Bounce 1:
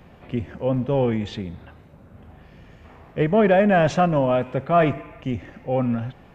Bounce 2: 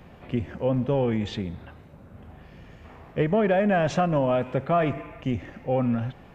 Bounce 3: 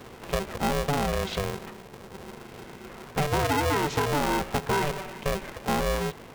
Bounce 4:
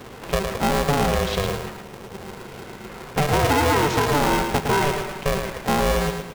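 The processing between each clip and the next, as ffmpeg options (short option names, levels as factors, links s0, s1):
-af "acompressor=threshold=0.112:ratio=4"
-af "acompressor=threshold=0.0447:ratio=3,aeval=exprs='val(0)*sgn(sin(2*PI*290*n/s))':c=same,volume=1.41"
-af "aecho=1:1:110|220|330|440:0.501|0.175|0.0614|0.0215,volume=1.78"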